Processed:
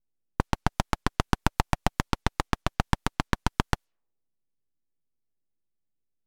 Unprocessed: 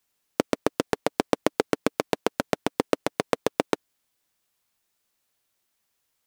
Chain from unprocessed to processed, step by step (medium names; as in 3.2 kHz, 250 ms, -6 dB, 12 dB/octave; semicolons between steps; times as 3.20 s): full-wave rectifier; level-controlled noise filter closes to 310 Hz, open at -27 dBFS